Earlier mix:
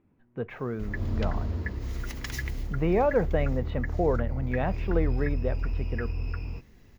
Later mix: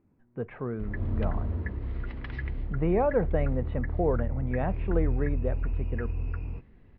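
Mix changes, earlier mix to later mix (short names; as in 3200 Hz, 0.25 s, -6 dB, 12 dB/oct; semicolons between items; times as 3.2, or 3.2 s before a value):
background: add steep low-pass 5000 Hz 48 dB/oct; master: add air absorption 480 m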